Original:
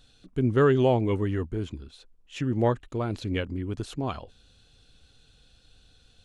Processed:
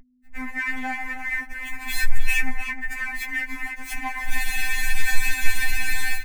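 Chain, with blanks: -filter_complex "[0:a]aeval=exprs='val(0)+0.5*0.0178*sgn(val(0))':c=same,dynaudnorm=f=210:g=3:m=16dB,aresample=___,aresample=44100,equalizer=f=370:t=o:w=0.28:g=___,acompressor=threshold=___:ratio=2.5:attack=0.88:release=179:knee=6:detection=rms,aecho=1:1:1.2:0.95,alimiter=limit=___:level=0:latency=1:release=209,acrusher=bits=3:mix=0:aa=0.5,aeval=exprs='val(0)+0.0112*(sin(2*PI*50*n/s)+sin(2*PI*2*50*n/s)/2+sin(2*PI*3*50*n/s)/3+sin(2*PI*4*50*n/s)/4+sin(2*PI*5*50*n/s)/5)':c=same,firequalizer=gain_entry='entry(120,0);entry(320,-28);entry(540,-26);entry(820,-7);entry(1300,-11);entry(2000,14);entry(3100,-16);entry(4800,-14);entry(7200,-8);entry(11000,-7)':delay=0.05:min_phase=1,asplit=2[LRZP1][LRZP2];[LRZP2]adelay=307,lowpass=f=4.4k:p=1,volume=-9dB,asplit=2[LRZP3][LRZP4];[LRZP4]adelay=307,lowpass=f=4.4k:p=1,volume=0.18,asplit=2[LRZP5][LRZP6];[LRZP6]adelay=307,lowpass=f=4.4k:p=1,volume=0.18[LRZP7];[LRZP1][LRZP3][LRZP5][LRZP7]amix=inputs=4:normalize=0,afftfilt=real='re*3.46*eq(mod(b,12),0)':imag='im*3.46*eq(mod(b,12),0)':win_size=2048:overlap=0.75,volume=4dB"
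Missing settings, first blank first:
32000, -8, -24dB, -15.5dB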